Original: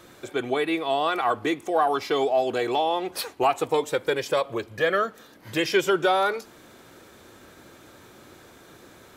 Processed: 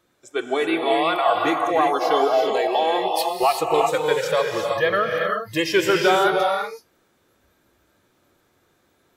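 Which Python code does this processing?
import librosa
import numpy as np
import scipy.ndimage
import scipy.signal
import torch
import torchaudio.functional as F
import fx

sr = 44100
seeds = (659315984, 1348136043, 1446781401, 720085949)

y = fx.noise_reduce_blind(x, sr, reduce_db=19)
y = fx.rev_gated(y, sr, seeds[0], gate_ms=400, shape='rising', drr_db=1.0)
y = F.gain(torch.from_numpy(y), 2.5).numpy()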